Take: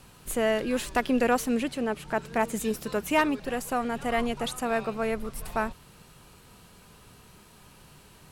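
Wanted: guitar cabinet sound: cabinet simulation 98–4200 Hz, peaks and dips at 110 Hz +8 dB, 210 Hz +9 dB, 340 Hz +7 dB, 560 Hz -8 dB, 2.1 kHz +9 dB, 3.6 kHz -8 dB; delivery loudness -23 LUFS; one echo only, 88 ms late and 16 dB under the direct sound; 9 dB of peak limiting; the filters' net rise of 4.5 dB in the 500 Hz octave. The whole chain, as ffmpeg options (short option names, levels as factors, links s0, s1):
-af "equalizer=f=500:t=o:g=7.5,alimiter=limit=0.133:level=0:latency=1,highpass=98,equalizer=f=110:t=q:w=4:g=8,equalizer=f=210:t=q:w=4:g=9,equalizer=f=340:t=q:w=4:g=7,equalizer=f=560:t=q:w=4:g=-8,equalizer=f=2100:t=q:w=4:g=9,equalizer=f=3600:t=q:w=4:g=-8,lowpass=f=4200:w=0.5412,lowpass=f=4200:w=1.3066,aecho=1:1:88:0.158,volume=1.5"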